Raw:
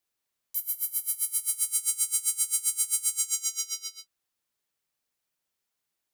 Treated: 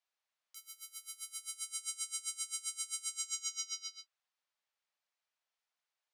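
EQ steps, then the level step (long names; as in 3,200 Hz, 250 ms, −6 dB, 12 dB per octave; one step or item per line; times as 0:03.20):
high-pass filter 590 Hz 24 dB per octave
high-frequency loss of the air 100 metres
−1.5 dB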